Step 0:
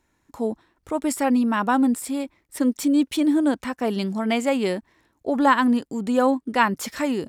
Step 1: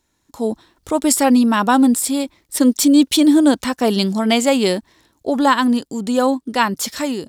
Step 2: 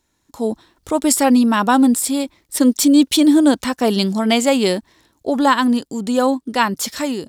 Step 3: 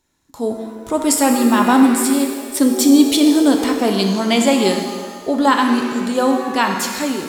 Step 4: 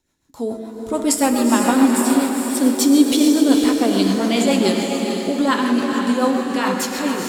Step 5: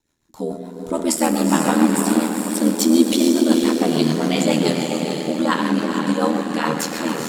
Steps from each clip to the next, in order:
automatic gain control; high shelf with overshoot 2,900 Hz +6 dB, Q 1.5; level −1 dB
no processing that can be heard
reverb with rising layers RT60 1.6 s, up +7 semitones, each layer −8 dB, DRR 3.5 dB; level −1 dB
rotating-speaker cabinet horn 7 Hz; feedback delay with all-pass diffusion 451 ms, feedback 44%, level −5 dB; level −1 dB
ring modulation 40 Hz; level +1.5 dB

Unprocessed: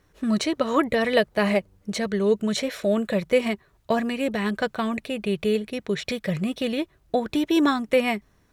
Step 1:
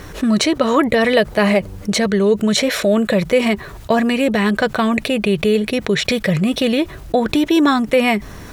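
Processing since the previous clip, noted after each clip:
envelope flattener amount 50%
level +4.5 dB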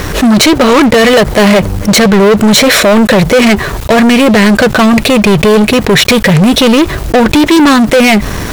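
leveller curve on the samples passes 5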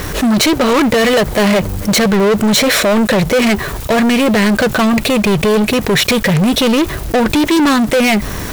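spike at every zero crossing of −15.5 dBFS
level −6 dB

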